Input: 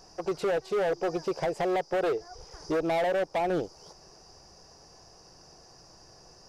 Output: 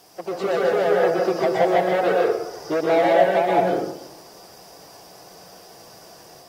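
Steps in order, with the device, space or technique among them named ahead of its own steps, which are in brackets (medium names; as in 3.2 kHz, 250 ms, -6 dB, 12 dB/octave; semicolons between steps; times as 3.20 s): filmed off a television (band-pass 170–6400 Hz; peaking EQ 650 Hz +6 dB 0.21 oct; reverberation RT60 0.80 s, pre-delay 113 ms, DRR -2.5 dB; white noise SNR 31 dB; level rider gain up to 4 dB; AAC 48 kbps 48 kHz)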